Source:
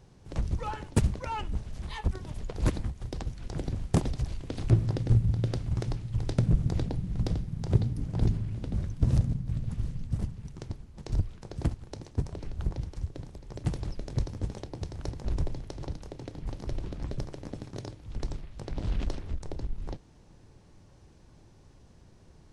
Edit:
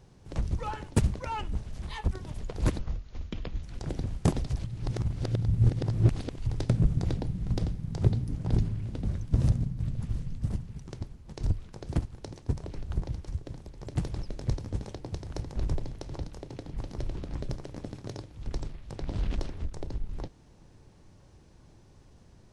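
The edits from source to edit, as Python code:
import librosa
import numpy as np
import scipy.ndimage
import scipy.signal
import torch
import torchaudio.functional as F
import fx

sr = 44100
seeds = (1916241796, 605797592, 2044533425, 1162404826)

y = fx.edit(x, sr, fx.speed_span(start_s=2.79, length_s=0.53, speed=0.63),
    fx.reverse_span(start_s=4.33, length_s=1.82), tone=tone)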